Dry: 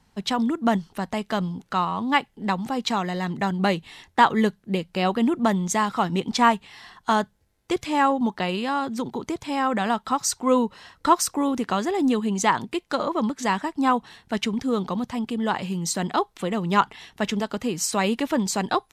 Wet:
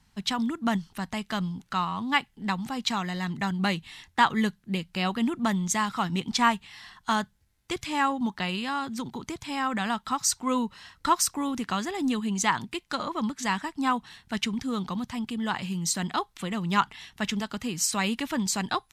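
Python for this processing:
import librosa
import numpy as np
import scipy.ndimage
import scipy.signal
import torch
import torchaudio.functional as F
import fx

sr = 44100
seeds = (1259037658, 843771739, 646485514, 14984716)

y = fx.peak_eq(x, sr, hz=490.0, db=-11.5, octaves=1.7)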